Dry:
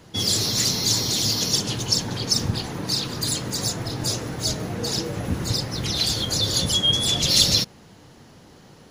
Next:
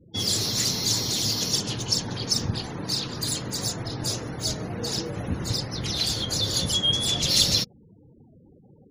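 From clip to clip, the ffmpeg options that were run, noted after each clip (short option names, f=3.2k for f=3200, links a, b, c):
-af "afftfilt=real='re*gte(hypot(re,im),0.01)':imag='im*gte(hypot(re,im),0.01)':win_size=1024:overlap=0.75,volume=-3dB"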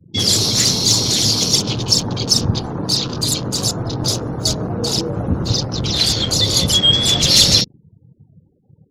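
-af "apsyclip=12dB,afwtdn=0.0562,volume=-2dB"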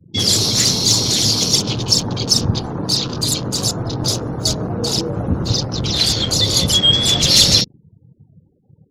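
-af anull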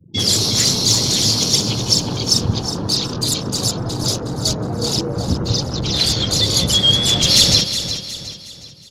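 -af "aecho=1:1:365|730|1095|1460:0.316|0.133|0.0558|0.0234,volume=-1dB"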